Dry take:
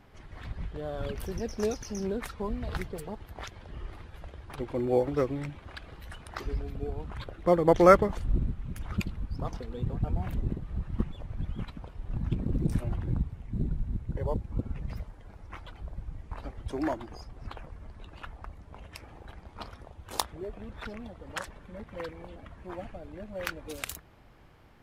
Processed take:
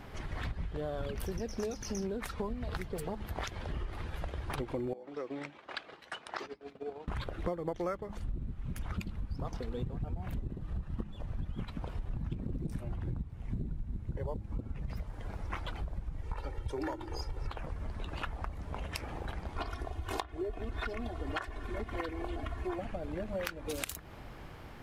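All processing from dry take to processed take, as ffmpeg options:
-filter_complex "[0:a]asettb=1/sr,asplit=3[a][b][c];[a]atrim=end=4.934[d];[b]atrim=start=4.93:end=7.08,asetpts=PTS-STARTPTS,afade=t=in:d=0.004:c=qsin,afade=t=out:st=2.146:d=0.004:c=qsin,acompressor=threshold=-38dB:ratio=8:attack=3.2:release=140:knee=1:detection=peak,highpass=350,lowpass=6.5k,agate=range=-33dB:threshold=-47dB:ratio=3:release=100:detection=peak[e];[c]atrim=start=7.076[f];[d][e]acrossfade=d=0.004:c1=hsin:c2=qsin[g];[g][f]acrossfade=d=0.004:c1=qsin:c2=hsin,asettb=1/sr,asplit=3[h][i][j];[h]atrim=end=10.434[k];[i]atrim=start=10.43:end=11.57,asetpts=PTS-STARTPTS,afade=t=in:d=0.004:c=qsin,afade=t=out:st=1.136:d=0.004:c=qsin,bandreject=f=2.2k:w=12,tremolo=f=27:d=0.261[l];[j]atrim=start=11.566[m];[k][l]acrossfade=d=0.004:c1=hsin:c2=qsin[n];[n][m]acrossfade=d=0.004:c1=qsin:c2=hsin,asettb=1/sr,asplit=3[o][p][q];[o]atrim=end=16.224[r];[p]atrim=start=16.22:end=17.51,asetpts=PTS-STARTPTS,afade=t=in:d=0.004:c=qsin,afade=t=out:st=1.286:d=0.004:c=qsin,bandreject=f=50:t=h:w=6,bandreject=f=100:t=h:w=6,bandreject=f=150:t=h:w=6,bandreject=f=200:t=h:w=6,bandreject=f=250:t=h:w=6,bandreject=f=300:t=h:w=6,bandreject=f=350:t=h:w=6,bandreject=f=400:t=h:w=6,aecho=1:1:2.2:0.7,atrim=end_sample=56889[s];[q]atrim=start=17.506[t];[r][s]acrossfade=d=0.004:c1=hsin:c2=qsin[u];[u][t]acrossfade=d=0.004:c1=qsin:c2=hsin,asettb=1/sr,asplit=3[v][w][x];[v]atrim=end=19.564[y];[w]atrim=start=19.56:end=22.79,asetpts=PTS-STARTPTS,afade=t=in:d=0.004:c=qsin,afade=t=out:st=3.226:d=0.004:c=qsin,acrossover=split=3400[z][aa];[aa]acompressor=threshold=-54dB:ratio=4:attack=1:release=60[ab];[z][ab]amix=inputs=2:normalize=0,aecho=1:1:2.8:0.89,atrim=end_sample=142443[ac];[x]atrim=start=22.786[ad];[y][ac]acrossfade=d=0.004:c1=hsin:c2=qsin[ae];[ae][ad]acrossfade=d=0.004:c1=qsin:c2=hsin,bandreject=f=103.7:t=h:w=4,bandreject=f=207.4:t=h:w=4,bandreject=f=311.1:t=h:w=4,acompressor=threshold=-42dB:ratio=12,volume=9dB"

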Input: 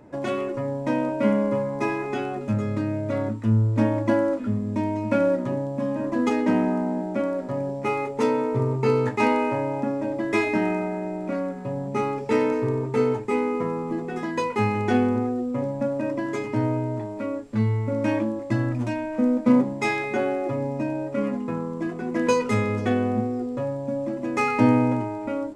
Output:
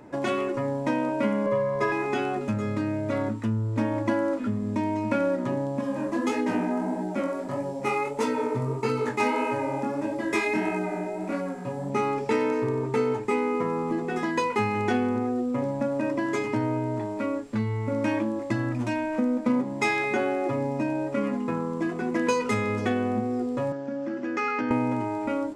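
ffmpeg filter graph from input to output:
-filter_complex "[0:a]asettb=1/sr,asplit=3[a][b][c];[a]atrim=end=1.464[d];[b]atrim=start=1.46:end=1.92,asetpts=PTS-STARTPTS,afade=t=in:d=0.004:c=qsin,afade=t=out:st=0.456:d=0.004:c=qsin,lowpass=f=3.8k:p=1,aecho=1:1:1.8:0.83,atrim=end_sample=20286[e];[c]atrim=start=1.916[f];[d][e]acrossfade=d=0.004:c1=hsin:c2=qsin[g];[g][f]acrossfade=d=0.004:c1=qsin:c2=hsin,asettb=1/sr,asplit=3[h][i][j];[h]atrim=end=5.814[k];[i]atrim=start=5.81:end=11.9,asetpts=PTS-STARTPTS,afade=t=in:d=0.004:c=qsin,afade=t=out:st=6.086:d=0.004:c=qsin,highshelf=f=7.2k:g=9,flanger=delay=16.5:depth=7.6:speed=1.6[l];[j]atrim=start=11.896[m];[k][l]acrossfade=d=0.004:c1=hsin:c2=qsin[n];[n][m]acrossfade=d=0.004:c1=qsin:c2=hsin,asettb=1/sr,asplit=3[o][p][q];[o]atrim=end=23.724[r];[p]atrim=start=23.72:end=24.71,asetpts=PTS-STARTPTS,afade=t=in:d=0.004:c=qsin,afade=t=out:st=0.986:d=0.004:c=qsin,highpass=240,equalizer=f=640:t=q:w=4:g=-8,equalizer=f=1k:t=q:w=4:g=-9,equalizer=f=1.5k:t=q:w=4:g=8,equalizer=f=2.3k:t=q:w=4:g=-4,equalizer=f=3.9k:t=q:w=4:g=-7,lowpass=f=5.6k:w=0.5412,lowpass=f=5.6k:w=1.3066,acompressor=threshold=-28dB:ratio=3:attack=3.2:release=140:knee=1:detection=peak[s];[q]atrim=start=24.706[t];[r][s]acrossfade=d=0.004:c1=hsin:c2=qsin[u];[u][t]acrossfade=d=0.004:c1=qsin:c2=hsin,equalizer=f=580:w=2.8:g=-3.5,acompressor=threshold=-26dB:ratio=2.5,lowshelf=f=200:g=-7.5,volume=4.5dB"

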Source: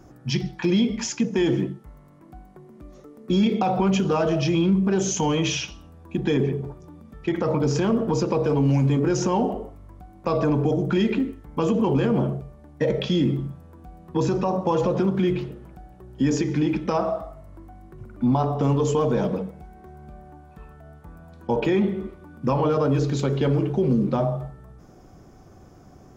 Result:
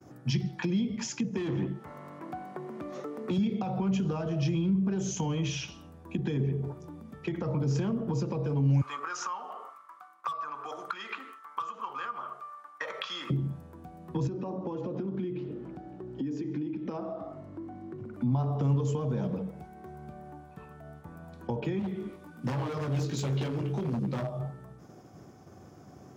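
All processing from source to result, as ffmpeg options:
-filter_complex "[0:a]asettb=1/sr,asplit=3[a][b][c];[a]atrim=end=1.374[d];[b]atrim=start=1.37:end=3.38,asetpts=PTS-STARTPTS,afade=t=in:d=0.004:c=qsin,afade=t=out:st=2.006:d=0.004:c=qsin,highpass=41,asplit=2[e][f];[f]highpass=f=720:p=1,volume=20dB,asoftclip=type=tanh:threshold=-12dB[g];[e][g]amix=inputs=2:normalize=0,lowpass=f=2k:p=1,volume=-6dB[h];[c]atrim=start=3.376[i];[d][h]acrossfade=d=0.004:c1=hsin:c2=qsin[j];[j][i]acrossfade=d=0.004:c1=qsin:c2=hsin,asettb=1/sr,asplit=3[k][l][m];[k]atrim=end=8.814[n];[l]atrim=start=8.81:end=13.3,asetpts=PTS-STARTPTS,afade=t=in:d=0.004:c=qsin,afade=t=out:st=4.486:d=0.004:c=qsin,highpass=f=1.2k:t=q:w=12,asoftclip=type=hard:threshold=-10.5dB[o];[m]atrim=start=13.296[p];[n][o]acrossfade=d=0.004:c1=hsin:c2=qsin[q];[q][p]acrossfade=d=0.004:c1=qsin:c2=hsin,asettb=1/sr,asplit=3[r][s][t];[r]atrim=end=14.274[u];[s]atrim=start=14.27:end=18.14,asetpts=PTS-STARTPTS,afade=t=in:d=0.004:c=qsin,afade=t=out:st=3.866:d=0.004:c=qsin,lowpass=5.4k,equalizer=f=300:t=o:w=0.92:g=11,acompressor=threshold=-37dB:ratio=2:attack=3.2:release=140:knee=1:detection=peak[v];[t]atrim=start=18.136[w];[u][v]acrossfade=d=0.004:c1=hsin:c2=qsin[x];[x][w]acrossfade=d=0.004:c1=qsin:c2=hsin,asettb=1/sr,asplit=3[y][z][aa];[y]atrim=end=21.794[ab];[z]atrim=start=21.79:end=24.39,asetpts=PTS-STARTPTS,afade=t=in:d=0.004:c=qsin,afade=t=out:st=2.596:d=0.004:c=qsin,flanger=delay=15.5:depth=5.1:speed=1.3,highshelf=f=2.3k:g=8.5,aeval=exprs='0.1*(abs(mod(val(0)/0.1+3,4)-2)-1)':c=same[ac];[aa]atrim=start=24.386[ad];[ab][ac]acrossfade=d=0.004:c1=hsin:c2=qsin[ae];[ae][ad]acrossfade=d=0.004:c1=qsin:c2=hsin,highpass=f=88:w=0.5412,highpass=f=88:w=1.3066,acrossover=split=160[af][ag];[ag]acompressor=threshold=-33dB:ratio=10[ah];[af][ah]amix=inputs=2:normalize=0,agate=range=-33dB:threshold=-47dB:ratio=3:detection=peak"

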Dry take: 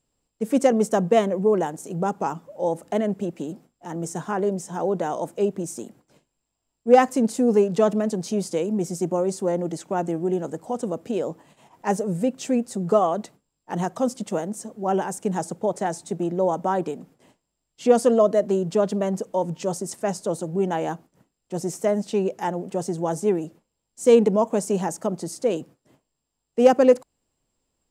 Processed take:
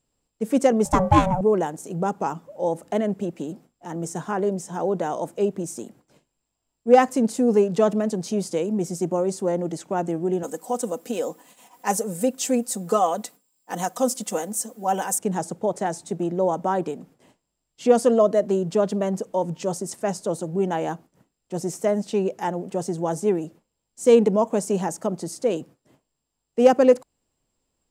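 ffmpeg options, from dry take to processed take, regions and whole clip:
-filter_complex "[0:a]asettb=1/sr,asplit=3[a][b][c];[a]atrim=end=0.854[d];[b]atrim=start=0.85:end=1.41,asetpts=PTS-STARTPTS,afade=t=in:d=0.004:c=qsin,afade=t=out:st=0.556:d=0.004:c=qsin,bandreject=f=387.7:t=h:w=4,bandreject=f=775.4:t=h:w=4,bandreject=f=1.1631k:t=h:w=4,bandreject=f=1.5508k:t=h:w=4,bandreject=f=1.9385k:t=h:w=4,bandreject=f=2.3262k:t=h:w=4,bandreject=f=2.7139k:t=h:w=4,acontrast=38,aeval=exprs='val(0)*sin(2*PI*370*n/s)':c=same[e];[c]atrim=start=1.406[f];[d][e]acrossfade=d=0.004:c1=hsin:c2=qsin[g];[g][f]acrossfade=d=0.004:c1=qsin:c2=hsin,asettb=1/sr,asplit=3[h][i][j];[h]atrim=end=10.434[k];[i]atrim=start=10.43:end=15.19,asetpts=PTS-STARTPTS,afade=t=in:d=0.004:c=qsin,afade=t=out:st=4.756:d=0.004:c=qsin,aemphasis=mode=production:type=bsi,aecho=1:1:4:0.55,atrim=end_sample=209916[l];[j]atrim=start=15.186[m];[k][l]acrossfade=d=0.004:c1=hsin:c2=qsin[n];[n][m]acrossfade=d=0.004:c1=qsin:c2=hsin"

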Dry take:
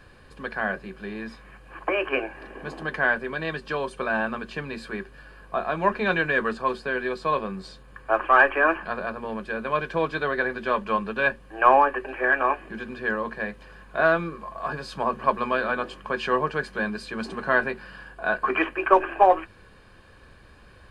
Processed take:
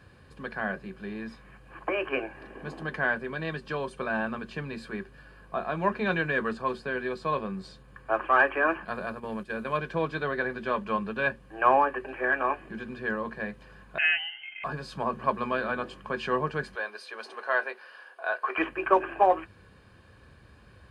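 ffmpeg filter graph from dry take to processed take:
-filter_complex "[0:a]asettb=1/sr,asplit=3[a][b][c];[a]atrim=end=8.854[d];[b]atrim=start=8.85:end=9.78,asetpts=PTS-STARTPTS,afade=t=in:d=0.004:c=qsin,afade=t=out:st=0.926:d=0.004:c=qsin,agate=range=-7dB:threshold=-37dB:ratio=16:release=100:detection=peak,highshelf=f=6.7k:g=10.5[e];[c]atrim=start=9.776[f];[d][e]acrossfade=d=0.004:c1=hsin:c2=qsin[g];[g][f]acrossfade=d=0.004:c1=qsin:c2=hsin,asettb=1/sr,asplit=3[h][i][j];[h]atrim=end=13.984[k];[i]atrim=start=13.98:end=14.64,asetpts=PTS-STARTPTS,afade=t=in:d=0.004:c=qsin,afade=t=out:st=0.656:d=0.004:c=qsin,bandreject=f=2.2k:w=7.8,lowpass=f=2.7k:t=q:w=0.5098,lowpass=f=2.7k:t=q:w=0.6013,lowpass=f=2.7k:t=q:w=0.9,lowpass=f=2.7k:t=q:w=2.563,afreqshift=-3200[l];[j]atrim=start=14.636[m];[k][l]acrossfade=d=0.004:c1=hsin:c2=qsin[n];[n][m]acrossfade=d=0.004:c1=qsin:c2=hsin,asettb=1/sr,asplit=3[o][p][q];[o]atrim=end=16.754[r];[p]atrim=start=16.75:end=18.58,asetpts=PTS-STARTPTS,afade=t=in:d=0.004:c=qsin,afade=t=out:st=1.826:d=0.004:c=qsin,highpass=f=470:w=0.5412,highpass=f=470:w=1.3066,bandreject=f=7.5k:w=5.3[s];[q]atrim=start=18.576[t];[r][s]acrossfade=d=0.004:c1=hsin:c2=qsin[u];[u][t]acrossfade=d=0.004:c1=qsin:c2=hsin,highpass=51,equalizer=f=110:t=o:w=2.2:g=6.5,volume=-5dB"

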